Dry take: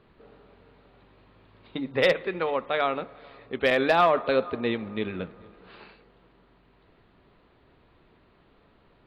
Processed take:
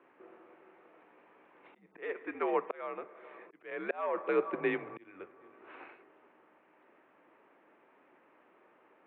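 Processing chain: slow attack 744 ms; mistuned SSB -82 Hz 410–2600 Hz

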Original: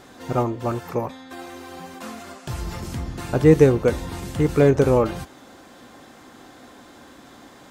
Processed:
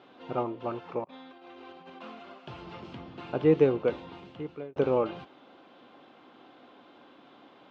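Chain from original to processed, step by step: 1.04–1.90 s: compressor with a negative ratio -40 dBFS, ratio -0.5; cabinet simulation 200–3500 Hz, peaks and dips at 230 Hz -3 dB, 1.8 kHz -8 dB, 2.9 kHz +4 dB; 3.92–4.76 s: fade out; trim -7 dB

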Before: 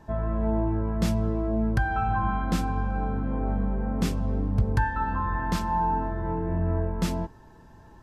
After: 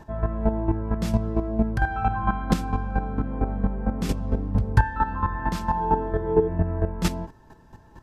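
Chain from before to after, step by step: square tremolo 4.4 Hz, depth 65%, duty 15%; 5.75–6.47 s: small resonant body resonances 420/3300 Hz, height 12 dB -> 16 dB; trim +7 dB

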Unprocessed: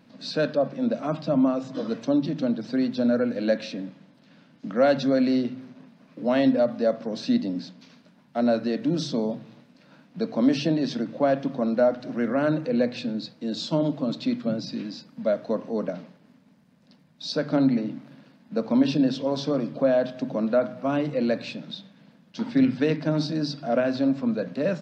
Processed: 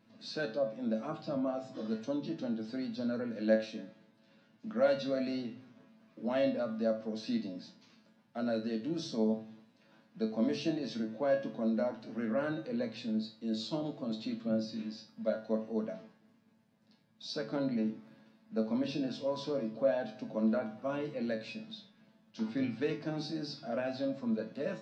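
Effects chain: feedback comb 110 Hz, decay 0.32 s, harmonics all, mix 90%

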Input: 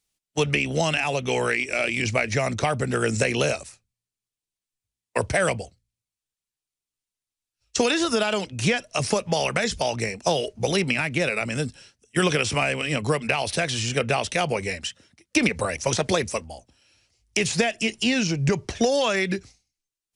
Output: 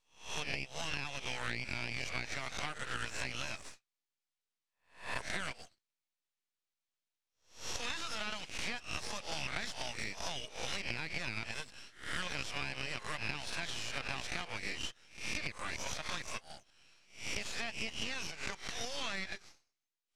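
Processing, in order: reverse spectral sustain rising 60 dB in 0.40 s; high-pass 1.3 kHz 12 dB/octave; compression 6:1, threshold -33 dBFS, peak gain reduction 15 dB; half-wave rectifier; distance through air 73 m; trim +2 dB

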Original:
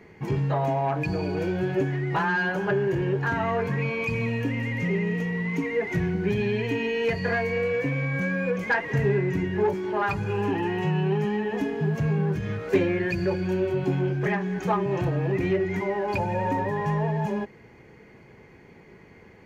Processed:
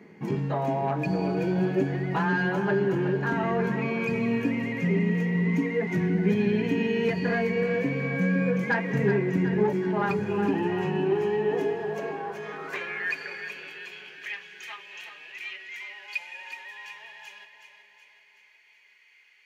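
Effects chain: high-pass sweep 200 Hz -> 2.7 kHz, 10.65–13.70 s; two-band feedback delay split 520 Hz, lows 512 ms, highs 373 ms, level -9 dB; trim -3 dB

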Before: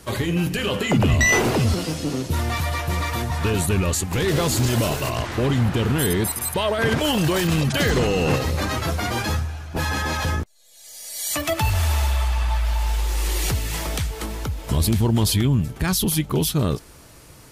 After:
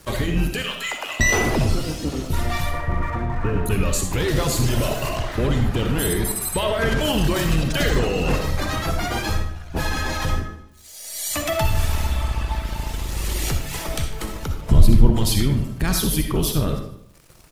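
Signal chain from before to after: octave divider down 2 oct, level -1 dB; 0.62–1.20 s: high-pass 1.1 kHz 12 dB/octave; reverb removal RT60 0.83 s; 2.71–3.66 s: low-pass 2 kHz 24 dB/octave; 14.61–15.13 s: tilt EQ -2 dB/octave; in parallel at -2 dB: compression, threshold -32 dBFS, peak gain reduction 24 dB; on the sum: crossover distortion -43.5 dBFS; feedback delay 151 ms, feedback 37%, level -20 dB; on a send at -3.5 dB: reverberation RT60 0.65 s, pre-delay 20 ms; on the sum: trim -2 dB

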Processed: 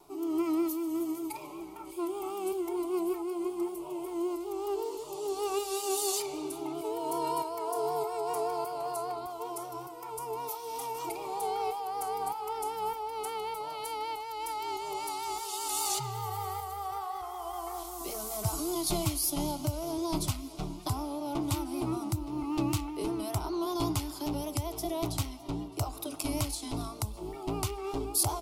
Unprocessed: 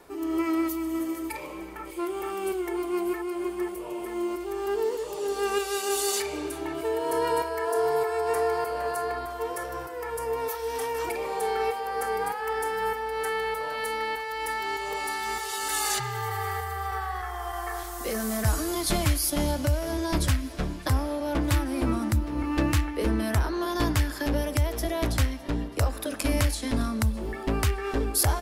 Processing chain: vibrato 5.2 Hz 58 cents; static phaser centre 340 Hz, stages 8; trim -2.5 dB

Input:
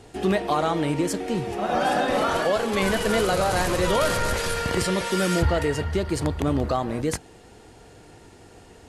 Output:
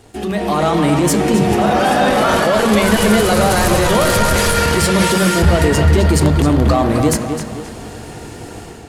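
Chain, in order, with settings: treble shelf 12 kHz +11.5 dB; peak limiter -19.5 dBFS, peak gain reduction 7.5 dB; level rider gain up to 11 dB; waveshaping leveller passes 1; tape echo 263 ms, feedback 46%, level -5 dB, low-pass 4.6 kHz; on a send at -14.5 dB: reverberation RT60 1.1 s, pre-delay 3 ms

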